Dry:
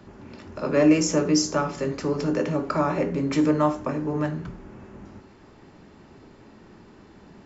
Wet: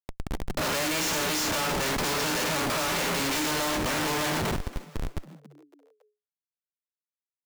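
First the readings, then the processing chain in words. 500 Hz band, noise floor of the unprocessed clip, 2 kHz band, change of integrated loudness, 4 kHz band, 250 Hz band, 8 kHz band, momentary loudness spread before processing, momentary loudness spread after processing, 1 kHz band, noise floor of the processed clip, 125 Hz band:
-6.5 dB, -51 dBFS, +6.5 dB, -3.0 dB, +7.5 dB, -9.5 dB, n/a, 13 LU, 12 LU, +0.5 dB, under -85 dBFS, -5.5 dB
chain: spectral whitening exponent 0.3; HPF 330 Hz 6 dB/oct; Schmitt trigger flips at -34 dBFS; frequency-shifting echo 0.278 s, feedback 44%, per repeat +140 Hz, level -19 dB

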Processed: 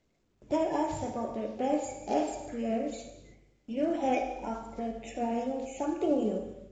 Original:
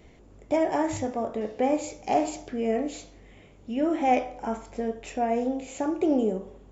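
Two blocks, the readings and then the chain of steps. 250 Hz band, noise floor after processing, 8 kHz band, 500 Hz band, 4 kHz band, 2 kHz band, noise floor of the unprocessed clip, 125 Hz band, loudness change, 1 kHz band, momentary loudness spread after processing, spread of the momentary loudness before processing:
-4.5 dB, -72 dBFS, n/a, -4.5 dB, -4.0 dB, -6.0 dB, -53 dBFS, -3.5 dB, -4.5 dB, -5.5 dB, 9 LU, 9 LU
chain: bin magnitudes rounded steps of 30 dB; gate with hold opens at -41 dBFS; low shelf 130 Hz +3.5 dB; non-linear reverb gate 0.36 s falling, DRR 4.5 dB; gain -5.5 dB; µ-law 128 kbps 16000 Hz

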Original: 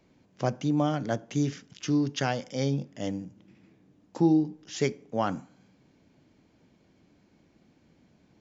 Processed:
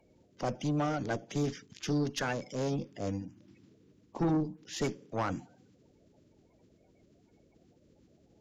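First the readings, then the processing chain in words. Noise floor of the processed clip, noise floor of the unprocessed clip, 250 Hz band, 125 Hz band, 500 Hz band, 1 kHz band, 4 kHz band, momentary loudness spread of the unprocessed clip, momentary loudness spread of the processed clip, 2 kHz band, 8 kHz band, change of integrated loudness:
-67 dBFS, -65 dBFS, -6.5 dB, -4.5 dB, -4.0 dB, -3.5 dB, -4.0 dB, 11 LU, 8 LU, -2.0 dB, n/a, -5.0 dB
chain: bin magnitudes rounded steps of 30 dB; tube stage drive 24 dB, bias 0.4

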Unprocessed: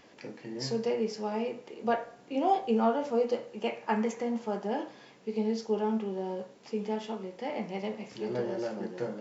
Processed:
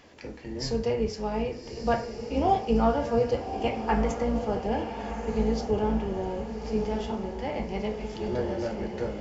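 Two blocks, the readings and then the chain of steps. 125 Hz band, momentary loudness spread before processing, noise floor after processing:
n/a, 10 LU, -41 dBFS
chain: octaver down 2 oct, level -3 dB; on a send: diffused feedback echo 1.225 s, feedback 51%, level -8 dB; on the sum: gain +2.5 dB

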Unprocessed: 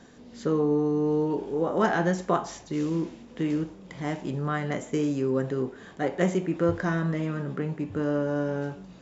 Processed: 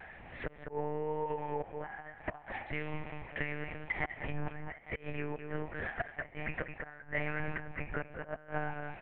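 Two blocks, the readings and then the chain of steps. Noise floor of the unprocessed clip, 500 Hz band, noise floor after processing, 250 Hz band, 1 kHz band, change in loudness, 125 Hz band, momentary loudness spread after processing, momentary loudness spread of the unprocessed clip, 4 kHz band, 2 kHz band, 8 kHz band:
-49 dBFS, -13.0 dB, -55 dBFS, -18.0 dB, -8.5 dB, -11.5 dB, -12.5 dB, 7 LU, 8 LU, -10.0 dB, -2.0 dB, n/a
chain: band shelf 1300 Hz +10.5 dB; flipped gate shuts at -15 dBFS, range -27 dB; thirty-one-band EQ 200 Hz -8 dB, 1000 Hz -3 dB, 2500 Hz +7 dB; on a send: echo 0.207 s -9.5 dB; on the sum: compressor 10:1, threshold -28 dBFS, peak gain reduction 8.5 dB; fixed phaser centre 1200 Hz, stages 6; monotone LPC vocoder at 8 kHz 150 Hz; vibrato 1.1 Hz 33 cents; gain +2 dB

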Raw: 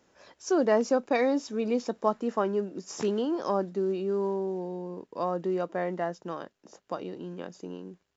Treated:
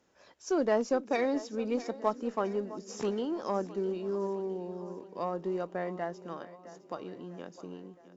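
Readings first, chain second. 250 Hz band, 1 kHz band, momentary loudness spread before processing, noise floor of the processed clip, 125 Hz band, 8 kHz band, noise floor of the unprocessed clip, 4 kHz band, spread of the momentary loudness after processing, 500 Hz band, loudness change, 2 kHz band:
-4.0 dB, -4.0 dB, 15 LU, -58 dBFS, -4.5 dB, n/a, -74 dBFS, -4.0 dB, 16 LU, -4.0 dB, -4.0 dB, -3.5 dB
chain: split-band echo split 390 Hz, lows 0.419 s, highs 0.659 s, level -15 dB; added harmonics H 4 -30 dB, 7 -33 dB, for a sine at -11 dBFS; gain -3.5 dB

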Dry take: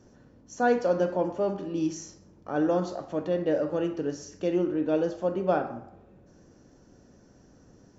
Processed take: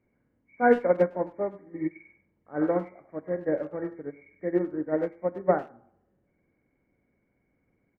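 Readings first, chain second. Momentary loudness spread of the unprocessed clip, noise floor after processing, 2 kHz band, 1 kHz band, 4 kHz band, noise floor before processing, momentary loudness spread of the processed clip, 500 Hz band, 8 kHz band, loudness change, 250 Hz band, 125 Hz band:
9 LU, -74 dBFS, +2.0 dB, +0.5 dB, under -10 dB, -57 dBFS, 15 LU, 0.0 dB, n/a, 0.0 dB, -2.0 dB, -3.0 dB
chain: nonlinear frequency compression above 1600 Hz 4:1; speakerphone echo 0.1 s, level -8 dB; upward expander 2.5:1, over -34 dBFS; gain +5 dB

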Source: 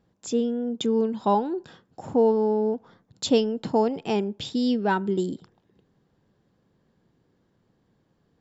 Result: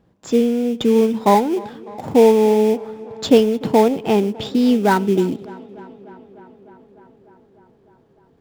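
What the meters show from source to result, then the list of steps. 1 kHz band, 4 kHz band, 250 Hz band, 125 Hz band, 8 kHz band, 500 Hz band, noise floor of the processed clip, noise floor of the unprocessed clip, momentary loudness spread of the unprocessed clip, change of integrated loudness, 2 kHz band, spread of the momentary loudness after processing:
+8.0 dB, +5.0 dB, +8.5 dB, +8.5 dB, n/a, +8.5 dB, -56 dBFS, -69 dBFS, 10 LU, +8.5 dB, +8.0 dB, 14 LU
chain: tone controls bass -1 dB, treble -8 dB; in parallel at -9.5 dB: sample-rate reducer 2900 Hz, jitter 20%; on the sum: tape echo 0.3 s, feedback 81%, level -20 dB, low-pass 3900 Hz; gain +6.5 dB

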